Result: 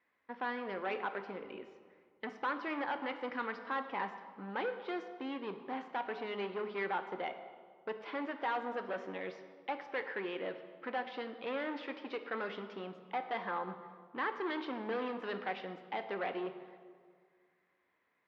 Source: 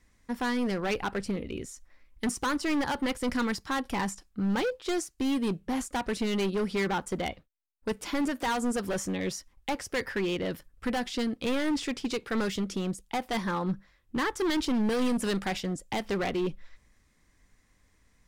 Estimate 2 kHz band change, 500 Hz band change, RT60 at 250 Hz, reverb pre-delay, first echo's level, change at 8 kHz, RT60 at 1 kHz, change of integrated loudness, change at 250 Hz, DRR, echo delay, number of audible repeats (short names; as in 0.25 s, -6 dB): -5.5 dB, -7.0 dB, 2.0 s, 4 ms, none, under -35 dB, 1.8 s, -9.0 dB, -14.5 dB, 8.0 dB, none, none